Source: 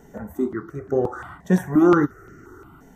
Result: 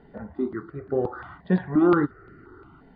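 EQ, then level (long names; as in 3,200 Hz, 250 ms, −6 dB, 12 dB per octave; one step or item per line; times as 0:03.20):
linear-phase brick-wall low-pass 4,900 Hz
−3.5 dB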